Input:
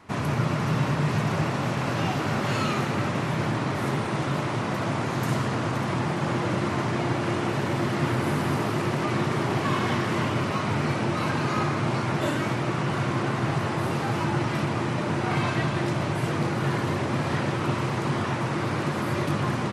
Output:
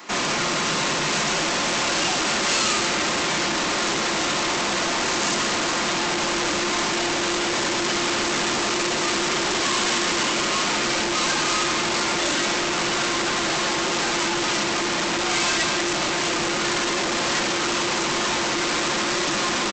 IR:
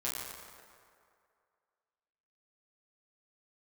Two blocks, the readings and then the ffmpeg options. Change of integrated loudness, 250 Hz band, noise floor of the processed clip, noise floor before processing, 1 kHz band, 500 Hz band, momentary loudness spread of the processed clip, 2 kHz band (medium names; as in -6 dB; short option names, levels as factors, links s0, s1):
+5.0 dB, -1.0 dB, -24 dBFS, -29 dBFS, +4.0 dB, +2.0 dB, 2 LU, +8.0 dB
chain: -af "highpass=f=230:w=0.5412,highpass=f=230:w=1.3066,aecho=1:1:5.7:0.35,aresample=16000,volume=42.2,asoftclip=hard,volume=0.0237,aresample=44100,crystalizer=i=5:c=0,volume=2.37"